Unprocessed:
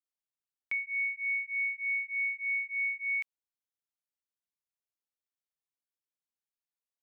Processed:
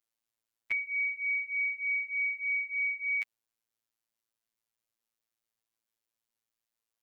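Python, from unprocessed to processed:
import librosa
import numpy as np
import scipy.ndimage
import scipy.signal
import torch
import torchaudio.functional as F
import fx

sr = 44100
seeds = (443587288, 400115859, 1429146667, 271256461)

y = fx.robotise(x, sr, hz=113.0)
y = F.gain(torch.from_numpy(y), 7.5).numpy()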